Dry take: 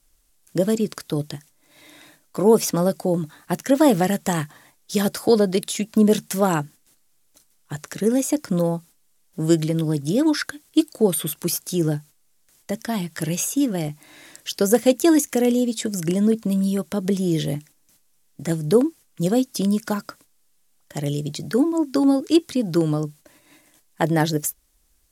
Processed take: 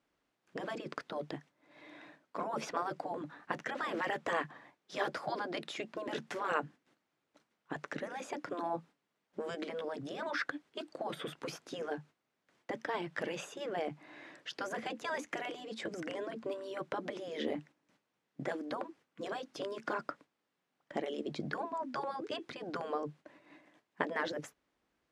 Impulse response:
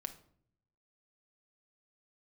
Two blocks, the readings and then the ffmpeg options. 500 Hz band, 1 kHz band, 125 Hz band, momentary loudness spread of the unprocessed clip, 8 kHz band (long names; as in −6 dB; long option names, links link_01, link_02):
−17.0 dB, −8.5 dB, −26.0 dB, 12 LU, −26.5 dB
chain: -af "alimiter=limit=-10dB:level=0:latency=1:release=61,afftfilt=real='re*lt(hypot(re,im),0.282)':imag='im*lt(hypot(re,im),0.282)':win_size=1024:overlap=0.75,highpass=190,lowpass=2100,volume=-2.5dB"